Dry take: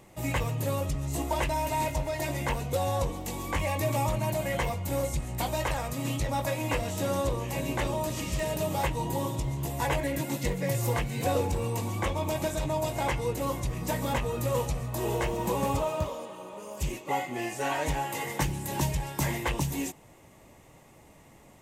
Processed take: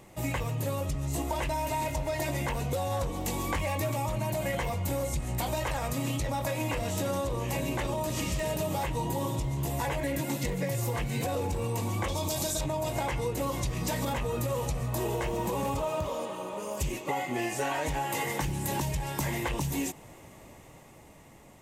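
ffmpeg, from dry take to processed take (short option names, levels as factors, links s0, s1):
-filter_complex "[0:a]asettb=1/sr,asplit=3[s0][s1][s2];[s0]atrim=end=2.924[s3];[s1]atrim=start=2.92:end=3.94,asetpts=PTS-STARTPTS,afade=t=in:d=0.004:c=qsin,afade=t=out:st=1.016:d=0.004:c=qsin,asoftclip=type=hard:threshold=0.0708[s4];[s2]atrim=start=3.936[s5];[s3][s4]acrossfade=d=0.004:c1=hsin:c2=qsin[s6];[s6][s5]acrossfade=d=0.004:c1=qsin:c2=hsin,asettb=1/sr,asplit=3[s7][s8][s9];[s7]atrim=end=12.084[s10];[s8]atrim=start=12.08:end=12.61,asetpts=PTS-STARTPTS,afade=t=in:d=0.004:c=qsin,afade=t=out:st=0.526:d=0.004:c=qsin,highshelf=f=3200:t=q:w=1.5:g=10[s11];[s9]atrim=start=12.606[s12];[s10][s11]acrossfade=d=0.004:c1=hsin:c2=qsin[s13];[s13][s12]acrossfade=d=0.004:c1=qsin:c2=hsin,asettb=1/sr,asplit=3[s14][s15][s16];[s14]atrim=end=13.514[s17];[s15]atrim=start=13.51:end=14.05,asetpts=PTS-STARTPTS,afade=t=in:d=0.004:c=qsin,afade=t=out:st=0.536:d=0.004:c=qsin,equalizer=f=4500:w=0.81:g=5.5[s18];[s16]atrim=start=14.046[s19];[s17][s18]acrossfade=d=0.004:c1=hsin:c2=qsin[s20];[s20][s19]acrossfade=d=0.004:c1=qsin:c2=hsin,dynaudnorm=f=320:g=9:m=1.58,alimiter=limit=0.126:level=0:latency=1:release=28,acompressor=threshold=0.0355:ratio=6,volume=1.19"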